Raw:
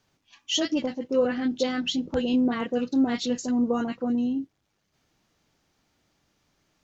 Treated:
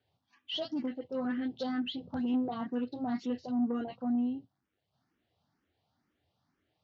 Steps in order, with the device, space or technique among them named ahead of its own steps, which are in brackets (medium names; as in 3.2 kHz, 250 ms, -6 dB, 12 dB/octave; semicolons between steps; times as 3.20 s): barber-pole phaser into a guitar amplifier (barber-pole phaser +2.1 Hz; saturation -21.5 dBFS, distortion -18 dB; cabinet simulation 77–4500 Hz, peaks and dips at 85 Hz +8 dB, 120 Hz +5 dB, 250 Hz +4 dB, 740 Hz +5 dB, 2.4 kHz -5 dB); trim -6 dB